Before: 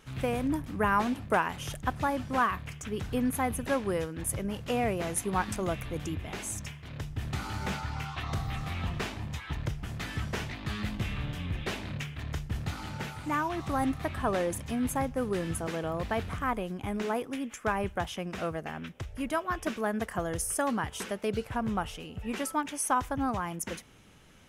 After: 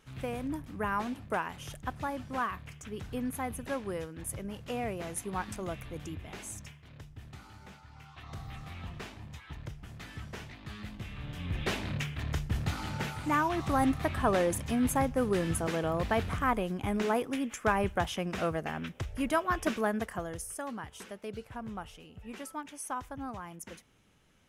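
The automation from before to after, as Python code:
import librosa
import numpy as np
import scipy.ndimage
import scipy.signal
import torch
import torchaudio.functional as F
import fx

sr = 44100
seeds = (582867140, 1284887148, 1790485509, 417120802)

y = fx.gain(x, sr, db=fx.line((6.51, -6.0), (7.81, -19.0), (8.44, -9.0), (11.12, -9.0), (11.65, 2.0), (19.78, 2.0), (20.52, -9.5)))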